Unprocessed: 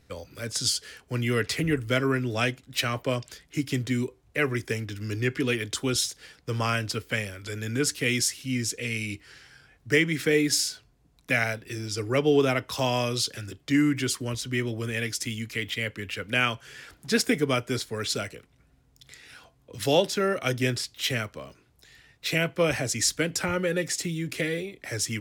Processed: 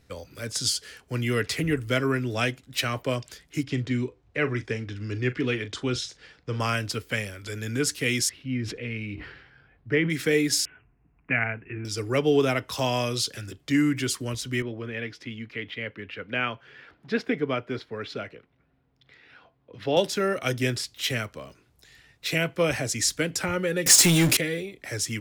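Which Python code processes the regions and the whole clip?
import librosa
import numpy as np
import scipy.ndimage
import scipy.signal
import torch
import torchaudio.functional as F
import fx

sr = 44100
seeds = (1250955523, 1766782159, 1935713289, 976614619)

y = fx.chain(x, sr, fx.air_absorb(metres=120.0),
    fx.doubler(ms=40.0, db=-14.0), at=(3.63, 6.6))
y = fx.chain(y, sr, fx.air_absorb(metres=400.0),
    fx.sustainer(db_per_s=61.0), at=(8.29, 10.1))
y = fx.chain(y, sr, fx.steep_lowpass(hz=2800.0, slope=96),
    fx.peak_eq(hz=550.0, db=-10.5, octaves=0.32), at=(10.65, 11.85))
y = fx.chain(y, sr, fx.highpass(hz=190.0, slope=6),
    fx.air_absorb(metres=330.0), at=(14.62, 19.97))
y = fx.chain(y, sr, fx.highpass(hz=130.0, slope=12),
    fx.high_shelf(hz=3700.0, db=11.5),
    fx.power_curve(exponent=0.5), at=(23.86, 24.37))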